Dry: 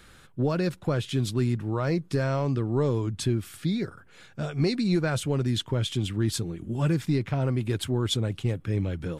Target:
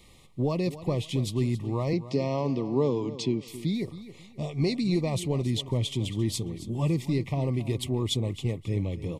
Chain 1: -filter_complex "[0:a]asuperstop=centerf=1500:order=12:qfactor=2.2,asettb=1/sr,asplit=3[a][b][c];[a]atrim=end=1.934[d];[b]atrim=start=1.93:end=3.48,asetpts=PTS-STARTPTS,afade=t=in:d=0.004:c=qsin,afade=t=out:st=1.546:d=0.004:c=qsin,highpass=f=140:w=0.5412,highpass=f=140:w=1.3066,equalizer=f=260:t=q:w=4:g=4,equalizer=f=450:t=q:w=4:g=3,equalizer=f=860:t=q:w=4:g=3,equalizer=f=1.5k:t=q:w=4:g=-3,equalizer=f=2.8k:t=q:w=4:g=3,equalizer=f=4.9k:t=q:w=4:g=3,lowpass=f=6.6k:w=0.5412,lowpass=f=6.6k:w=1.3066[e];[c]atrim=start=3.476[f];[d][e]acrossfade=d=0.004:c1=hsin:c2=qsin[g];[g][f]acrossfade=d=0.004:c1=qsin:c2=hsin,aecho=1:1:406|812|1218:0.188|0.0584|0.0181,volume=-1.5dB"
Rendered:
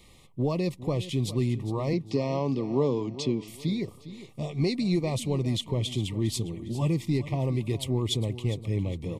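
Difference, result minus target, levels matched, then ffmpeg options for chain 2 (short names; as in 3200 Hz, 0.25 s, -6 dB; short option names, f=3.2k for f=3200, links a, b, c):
echo 0.135 s late
-filter_complex "[0:a]asuperstop=centerf=1500:order=12:qfactor=2.2,asettb=1/sr,asplit=3[a][b][c];[a]atrim=end=1.934[d];[b]atrim=start=1.93:end=3.48,asetpts=PTS-STARTPTS,afade=t=in:d=0.004:c=qsin,afade=t=out:st=1.546:d=0.004:c=qsin,highpass=f=140:w=0.5412,highpass=f=140:w=1.3066,equalizer=f=260:t=q:w=4:g=4,equalizer=f=450:t=q:w=4:g=3,equalizer=f=860:t=q:w=4:g=3,equalizer=f=1.5k:t=q:w=4:g=-3,equalizer=f=2.8k:t=q:w=4:g=3,equalizer=f=4.9k:t=q:w=4:g=3,lowpass=f=6.6k:w=0.5412,lowpass=f=6.6k:w=1.3066[e];[c]atrim=start=3.476[f];[d][e]acrossfade=d=0.004:c1=hsin:c2=qsin[g];[g][f]acrossfade=d=0.004:c1=qsin:c2=hsin,aecho=1:1:271|542|813:0.188|0.0584|0.0181,volume=-1.5dB"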